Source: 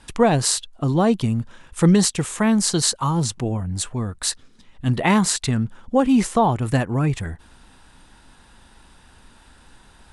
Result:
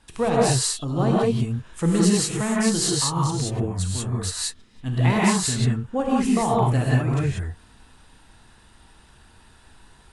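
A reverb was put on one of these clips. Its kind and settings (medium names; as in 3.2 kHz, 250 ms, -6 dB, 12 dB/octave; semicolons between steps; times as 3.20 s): gated-style reverb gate 210 ms rising, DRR -5 dB; trim -8 dB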